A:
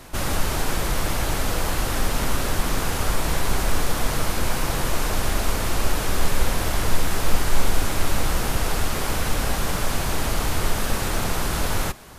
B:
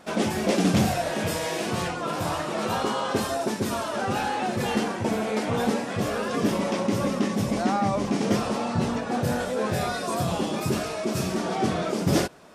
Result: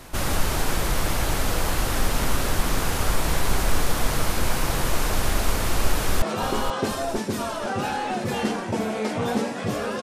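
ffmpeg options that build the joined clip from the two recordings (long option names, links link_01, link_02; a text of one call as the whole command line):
ffmpeg -i cue0.wav -i cue1.wav -filter_complex "[0:a]apad=whole_dur=10.02,atrim=end=10.02,atrim=end=6.222[link_01];[1:a]atrim=start=2.538:end=6.34[link_02];[link_01][link_02]acrossfade=duration=0.004:curve1=hsin:curve2=hsin,asplit=2[link_03][link_04];[link_04]afade=type=in:start_time=5.94:duration=0.01,afade=type=out:start_time=6.22:duration=0.01,aecho=0:1:480|960|1440|1920|2400:0.398107|0.159243|0.0636971|0.0254789|0.0101915[link_05];[link_03][link_05]amix=inputs=2:normalize=0" out.wav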